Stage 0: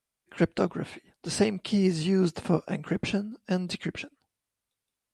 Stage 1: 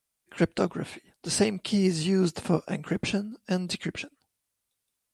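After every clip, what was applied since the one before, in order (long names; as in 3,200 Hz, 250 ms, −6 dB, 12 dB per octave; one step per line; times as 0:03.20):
high-shelf EQ 5,300 Hz +8 dB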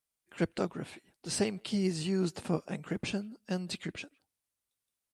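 far-end echo of a speakerphone 160 ms, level −30 dB
level −6.5 dB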